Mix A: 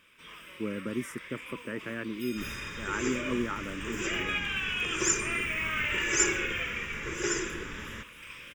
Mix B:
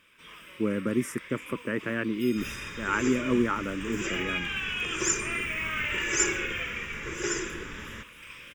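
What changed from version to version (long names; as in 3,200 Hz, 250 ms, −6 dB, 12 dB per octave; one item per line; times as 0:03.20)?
speech +6.5 dB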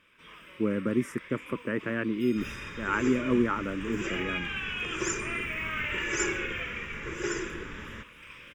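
master: add high-shelf EQ 4,400 Hz −10.5 dB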